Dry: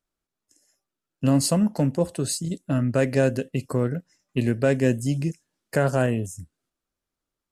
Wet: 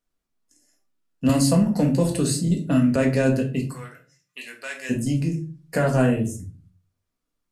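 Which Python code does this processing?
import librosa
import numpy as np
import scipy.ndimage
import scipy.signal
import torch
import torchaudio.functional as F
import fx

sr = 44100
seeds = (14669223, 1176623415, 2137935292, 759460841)

y = fx.highpass(x, sr, hz=1500.0, slope=12, at=(3.63, 4.89), fade=0.02)
y = fx.room_shoebox(y, sr, seeds[0], volume_m3=230.0, walls='furnished', distance_m=1.8)
y = fx.band_squash(y, sr, depth_pct=70, at=(1.29, 2.96))
y = y * 10.0 ** (-1.5 / 20.0)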